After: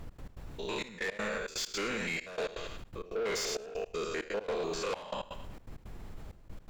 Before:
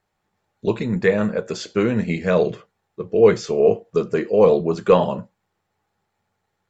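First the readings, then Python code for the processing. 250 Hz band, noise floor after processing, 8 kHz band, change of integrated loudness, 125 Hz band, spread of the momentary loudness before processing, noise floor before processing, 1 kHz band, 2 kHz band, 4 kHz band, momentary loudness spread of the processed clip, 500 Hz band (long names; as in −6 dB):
−20.5 dB, −55 dBFS, can't be measured, −16.5 dB, −21.0 dB, 10 LU, −76 dBFS, −13.5 dB, −7.0 dB, −2.0 dB, 17 LU, −19.0 dB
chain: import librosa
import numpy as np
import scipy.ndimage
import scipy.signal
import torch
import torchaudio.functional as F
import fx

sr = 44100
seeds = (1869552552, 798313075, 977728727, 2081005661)

p1 = fx.spec_steps(x, sr, hold_ms=100)
p2 = fx.echo_thinned(p1, sr, ms=105, feedback_pct=30, hz=560.0, wet_db=-6)
p3 = fx.level_steps(p2, sr, step_db=9)
p4 = p2 + (p3 * librosa.db_to_amplitude(-2.0))
p5 = np.diff(p4, prepend=0.0)
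p6 = fx.dmg_noise_colour(p5, sr, seeds[0], colour='brown', level_db=-61.0)
p7 = 10.0 ** (-38.0 / 20.0) * np.tanh(p6 / 10.0 ** (-38.0 / 20.0))
p8 = fx.high_shelf(p7, sr, hz=4600.0, db=-8.5)
p9 = fx.step_gate(p8, sr, bpm=164, pattern='x.x.xxxxx..x.xx', floor_db=-24.0, edge_ms=4.5)
p10 = fx.env_flatten(p9, sr, amount_pct=50)
y = p10 * librosa.db_to_amplitude(8.0)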